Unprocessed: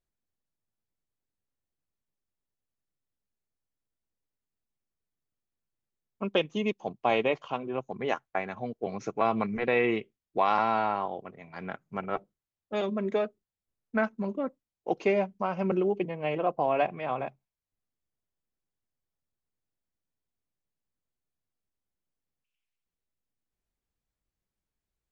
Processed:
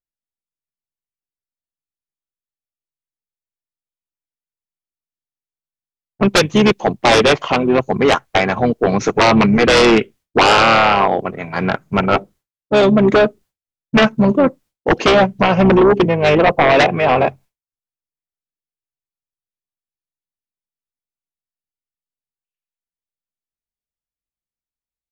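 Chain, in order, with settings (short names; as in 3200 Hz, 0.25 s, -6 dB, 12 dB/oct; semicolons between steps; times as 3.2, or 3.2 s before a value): expander -55 dBFS; harmoniser -7 st -12 dB; sine folder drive 17 dB, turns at -6.5 dBFS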